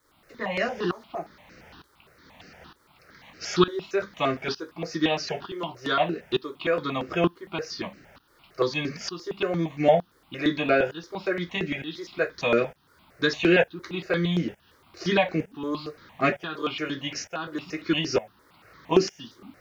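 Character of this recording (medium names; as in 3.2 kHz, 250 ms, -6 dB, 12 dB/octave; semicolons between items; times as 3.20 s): tremolo saw up 1.1 Hz, depth 90%; a quantiser's noise floor 12-bit, dither none; notches that jump at a steady rate 8.7 Hz 720–3400 Hz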